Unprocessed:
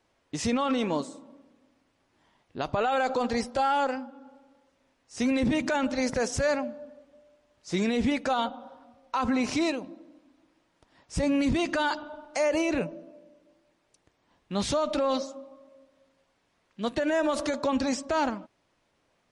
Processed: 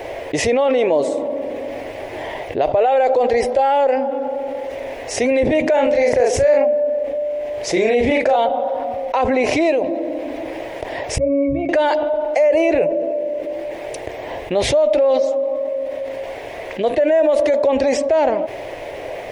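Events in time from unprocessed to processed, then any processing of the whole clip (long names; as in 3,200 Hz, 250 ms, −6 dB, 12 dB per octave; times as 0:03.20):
0:05.73–0:08.36: double-tracking delay 37 ms −2.5 dB
0:11.18–0:11.69: resonances in every octave C#, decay 0.28 s
whole clip: drawn EQ curve 120 Hz 0 dB, 200 Hz −10 dB, 400 Hz +9 dB, 630 Hz +14 dB, 1,300 Hz −8 dB, 2,000 Hz +7 dB, 4,400 Hz −6 dB, 8,500 Hz −7 dB, 13,000 Hz +2 dB; envelope flattener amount 70%; level −5 dB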